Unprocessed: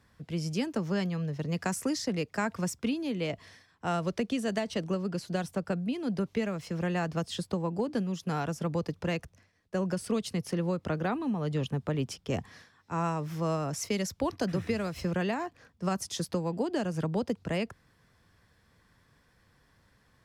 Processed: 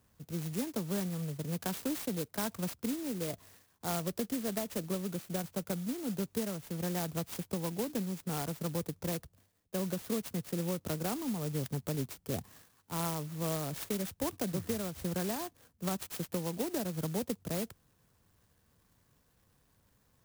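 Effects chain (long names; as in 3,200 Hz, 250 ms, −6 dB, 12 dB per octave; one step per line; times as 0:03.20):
converter with an unsteady clock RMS 0.13 ms
level −4.5 dB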